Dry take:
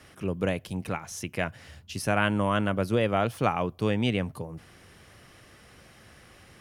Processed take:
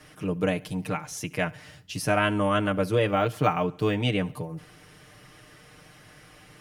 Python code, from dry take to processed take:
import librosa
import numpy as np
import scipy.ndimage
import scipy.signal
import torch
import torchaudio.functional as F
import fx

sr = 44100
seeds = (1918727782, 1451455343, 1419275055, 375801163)

y = x + 0.77 * np.pad(x, (int(6.6 * sr / 1000.0), 0))[:len(x)]
y = fx.echo_feedback(y, sr, ms=70, feedback_pct=57, wet_db=-23.5)
y = fx.resample_linear(y, sr, factor=2, at=(3.09, 3.95))